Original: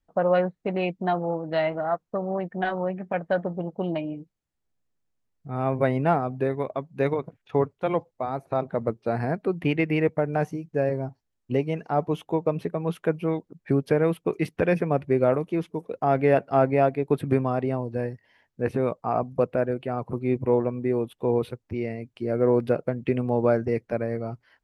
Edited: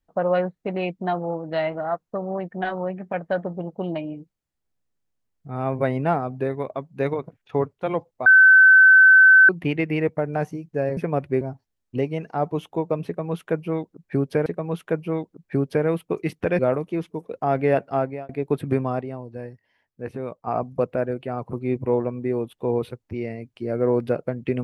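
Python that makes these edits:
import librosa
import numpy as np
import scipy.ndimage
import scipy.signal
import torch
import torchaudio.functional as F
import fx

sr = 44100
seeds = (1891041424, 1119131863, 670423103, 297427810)

y = fx.edit(x, sr, fx.bleep(start_s=8.26, length_s=1.23, hz=1530.0, db=-8.0),
    fx.repeat(start_s=12.62, length_s=1.4, count=2),
    fx.move(start_s=14.75, length_s=0.44, to_s=10.97),
    fx.fade_out_span(start_s=16.47, length_s=0.42),
    fx.clip_gain(start_s=17.61, length_s=1.46, db=-6.5), tone=tone)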